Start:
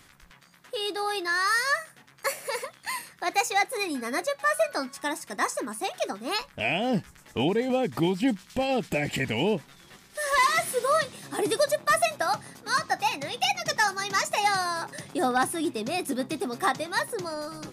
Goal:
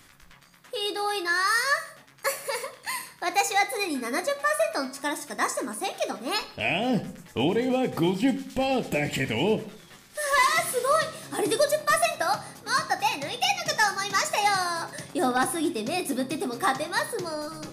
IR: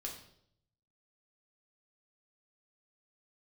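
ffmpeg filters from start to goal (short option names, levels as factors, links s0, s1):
-filter_complex "[0:a]asplit=2[s0][s1];[1:a]atrim=start_sample=2205,afade=t=out:st=0.35:d=0.01,atrim=end_sample=15876,highshelf=f=7300:g=7[s2];[s1][s2]afir=irnorm=-1:irlink=0,volume=0.708[s3];[s0][s3]amix=inputs=2:normalize=0,volume=0.75"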